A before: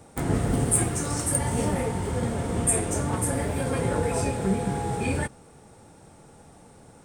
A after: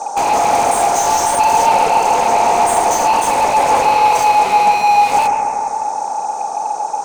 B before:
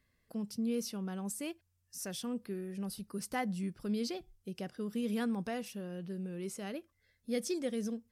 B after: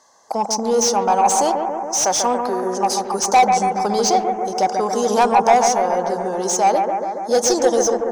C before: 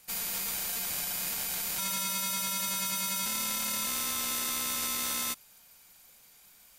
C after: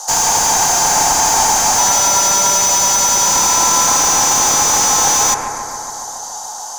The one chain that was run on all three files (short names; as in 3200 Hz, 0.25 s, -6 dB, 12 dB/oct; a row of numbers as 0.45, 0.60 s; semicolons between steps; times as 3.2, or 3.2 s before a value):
tracing distortion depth 0.021 ms; double band-pass 2300 Hz, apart 2.9 oct; overdrive pedal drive 31 dB, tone 2900 Hz, clips at -24.5 dBFS; on a send: analogue delay 0.14 s, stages 2048, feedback 72%, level -5 dB; on the sum: normalise peaks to -3 dBFS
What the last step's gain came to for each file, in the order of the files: +17.0, +21.0, +24.0 dB